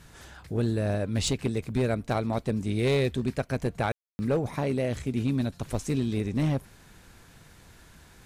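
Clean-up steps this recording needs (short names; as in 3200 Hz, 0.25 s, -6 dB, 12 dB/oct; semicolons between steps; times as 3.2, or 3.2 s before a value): clip repair -19 dBFS; room tone fill 3.92–4.19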